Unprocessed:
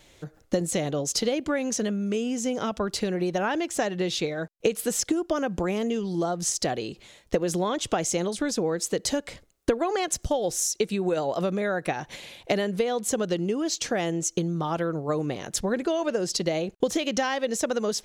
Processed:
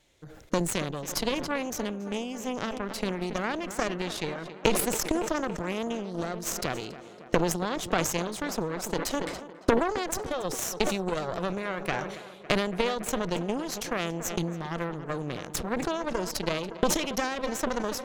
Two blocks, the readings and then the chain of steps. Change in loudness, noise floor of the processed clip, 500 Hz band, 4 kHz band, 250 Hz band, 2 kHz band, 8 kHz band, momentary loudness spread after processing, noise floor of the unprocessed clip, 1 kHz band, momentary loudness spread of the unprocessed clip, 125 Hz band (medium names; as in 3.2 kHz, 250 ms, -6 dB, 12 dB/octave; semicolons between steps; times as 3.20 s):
-3.0 dB, -46 dBFS, -4.0 dB, -2.0 dB, -3.5 dB, 0.0 dB, -4.5 dB, 7 LU, -58 dBFS, -0.5 dB, 4 LU, -2.5 dB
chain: Chebyshev shaper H 3 -11 dB, 4 -18 dB, 5 -29 dB, 7 -35 dB, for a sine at -9 dBFS; tape echo 280 ms, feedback 80%, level -14 dB, low-pass 2.9 kHz; decay stretcher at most 52 dB/s; trim +3 dB